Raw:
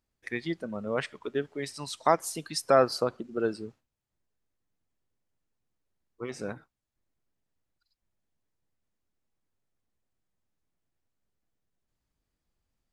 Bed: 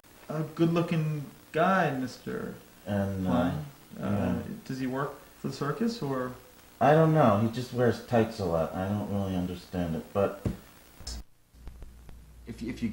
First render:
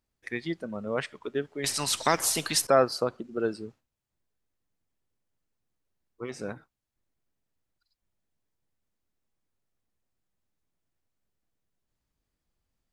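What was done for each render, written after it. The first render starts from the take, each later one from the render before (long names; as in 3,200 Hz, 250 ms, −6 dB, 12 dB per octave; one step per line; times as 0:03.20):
0:01.64–0:02.67: every bin compressed towards the loudest bin 2 to 1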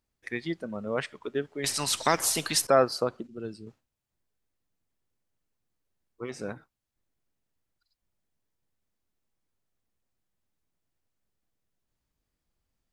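0:03.27–0:03.67: drawn EQ curve 130 Hz 0 dB, 600 Hz −13 dB, 1,500 Hz −14 dB, 2,900 Hz −5 dB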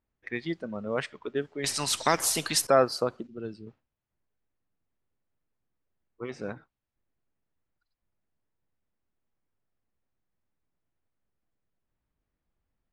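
low-pass that shuts in the quiet parts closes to 2,300 Hz, open at −24 dBFS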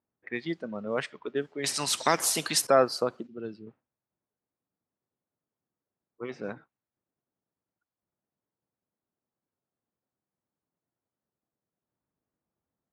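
high-pass filter 140 Hz 12 dB per octave
low-pass that shuts in the quiet parts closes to 1,300 Hz, open at −28 dBFS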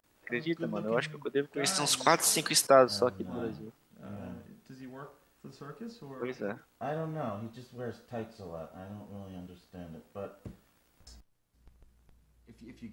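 mix in bed −14.5 dB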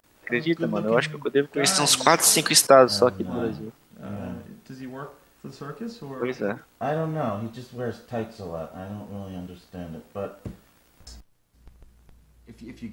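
level +9 dB
brickwall limiter −2 dBFS, peak gain reduction 3 dB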